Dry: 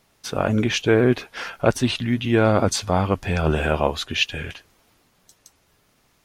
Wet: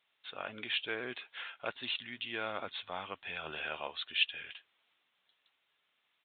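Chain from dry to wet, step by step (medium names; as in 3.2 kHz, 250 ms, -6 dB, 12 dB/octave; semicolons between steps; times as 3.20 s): differentiator; resampled via 8 kHz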